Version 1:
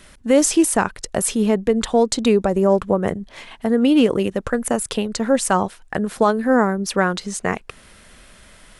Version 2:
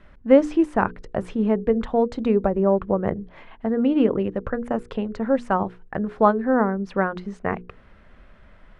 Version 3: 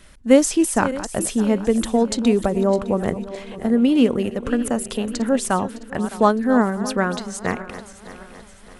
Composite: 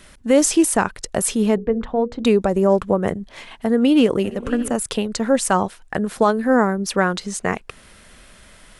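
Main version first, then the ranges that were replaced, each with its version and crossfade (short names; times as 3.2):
1
1.58–2.24 from 2
4.24–4.75 from 3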